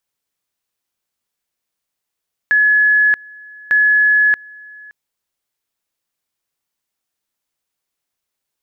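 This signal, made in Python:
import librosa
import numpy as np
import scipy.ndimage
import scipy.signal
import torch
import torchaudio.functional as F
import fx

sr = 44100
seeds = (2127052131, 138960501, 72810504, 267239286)

y = fx.two_level_tone(sr, hz=1700.0, level_db=-9.0, drop_db=25.5, high_s=0.63, low_s=0.57, rounds=2)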